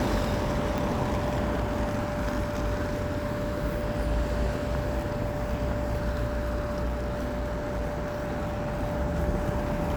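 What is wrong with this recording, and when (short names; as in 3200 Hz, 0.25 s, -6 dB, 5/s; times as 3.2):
tone 590 Hz -33 dBFS
0.78 pop
6.85–8.83 clipped -26 dBFS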